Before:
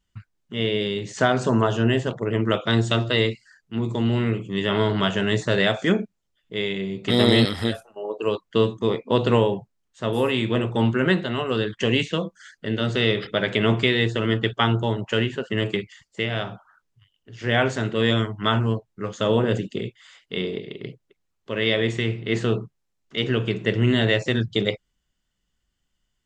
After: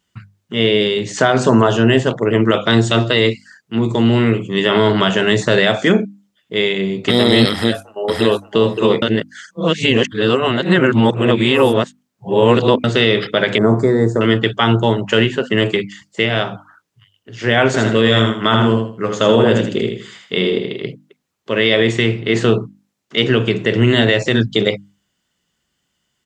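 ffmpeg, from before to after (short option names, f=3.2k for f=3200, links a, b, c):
-filter_complex "[0:a]asplit=2[a][b];[b]afade=t=in:st=7.51:d=0.01,afade=t=out:st=8.49:d=0.01,aecho=0:1:570|1140:0.841395|0.0841395[c];[a][c]amix=inputs=2:normalize=0,asettb=1/sr,asplit=3[d][e][f];[d]atrim=end=13.584[g];[e]atrim=start=13.58:end=14.21,asetpts=PTS-STARTPTS,afade=t=in:d=0.004:c=qsin,afade=t=out:st=0.626:d=0.004:c=qsin,asuperstop=centerf=2900:order=4:qfactor=0.52[h];[f]atrim=start=14.206[i];[g][h]acrossfade=d=0.004:c1=hsin:c2=qsin[j];[j][i]acrossfade=d=0.004:c1=qsin:c2=hsin,asettb=1/sr,asplit=3[k][l][m];[k]atrim=end=17.664[n];[l]atrim=start=17.66:end=20.86,asetpts=PTS-STARTPTS,afade=t=in:d=0.004:c=qsin,afade=t=out:st=3.196:d=0.004:c=qsin,aecho=1:1:80|160|240|320:0.562|0.157|0.0441|0.0123,atrim=end_sample=141120[o];[m]atrim=start=20.856[p];[n][o]acrossfade=d=0.004:c1=hsin:c2=qsin[q];[q][p]acrossfade=d=0.004:c1=qsin:c2=hsin,asplit=3[r][s][t];[r]atrim=end=9.022[u];[s]atrim=start=9.018:end=12.842,asetpts=PTS-STARTPTS,areverse[v];[t]atrim=start=12.838[w];[u][v]acrossfade=d=0.004:c1=hsin:c2=hsin[x];[x][w]acrossfade=d=0.004:c1=hsin:c2=hsin,highpass=120,bandreject=f=50:t=h:w=6,bandreject=f=100:t=h:w=6,bandreject=f=150:t=h:w=6,bandreject=f=200:t=h:w=6,bandreject=f=250:t=h:w=6,bandreject=f=300:t=h:w=6,alimiter=level_in=11dB:limit=-1dB:release=50:level=0:latency=1,volume=-1dB"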